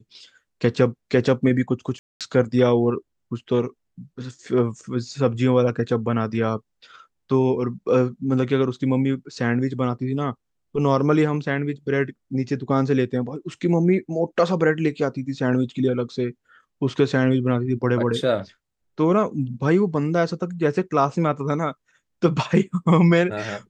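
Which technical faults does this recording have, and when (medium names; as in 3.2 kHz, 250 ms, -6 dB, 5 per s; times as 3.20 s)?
1.99–2.21 s: dropout 217 ms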